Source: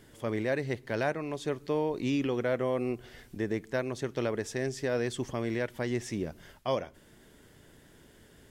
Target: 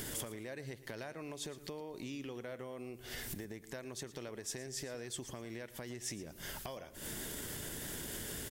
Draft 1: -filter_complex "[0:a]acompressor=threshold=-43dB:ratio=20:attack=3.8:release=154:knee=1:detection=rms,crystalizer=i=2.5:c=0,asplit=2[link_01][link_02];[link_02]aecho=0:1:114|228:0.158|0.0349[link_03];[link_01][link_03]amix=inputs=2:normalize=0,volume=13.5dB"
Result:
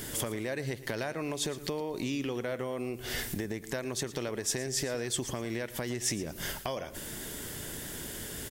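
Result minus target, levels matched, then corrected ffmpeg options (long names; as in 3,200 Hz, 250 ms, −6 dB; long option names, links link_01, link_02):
downward compressor: peak gain reduction −10.5 dB
-filter_complex "[0:a]acompressor=threshold=-54dB:ratio=20:attack=3.8:release=154:knee=1:detection=rms,crystalizer=i=2.5:c=0,asplit=2[link_01][link_02];[link_02]aecho=0:1:114|228:0.158|0.0349[link_03];[link_01][link_03]amix=inputs=2:normalize=0,volume=13.5dB"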